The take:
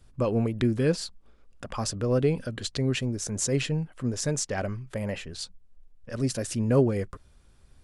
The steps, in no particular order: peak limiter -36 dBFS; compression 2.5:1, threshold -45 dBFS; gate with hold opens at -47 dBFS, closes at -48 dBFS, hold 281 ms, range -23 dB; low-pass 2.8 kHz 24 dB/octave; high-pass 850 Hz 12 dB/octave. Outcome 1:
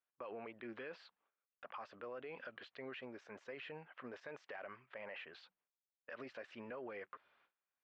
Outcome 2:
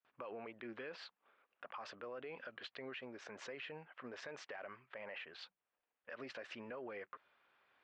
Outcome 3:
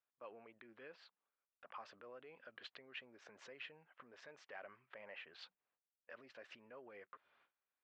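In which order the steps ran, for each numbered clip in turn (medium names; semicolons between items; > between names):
high-pass > peak limiter > low-pass > compression > gate with hold; low-pass > gate with hold > high-pass > peak limiter > compression; low-pass > compression > peak limiter > high-pass > gate with hold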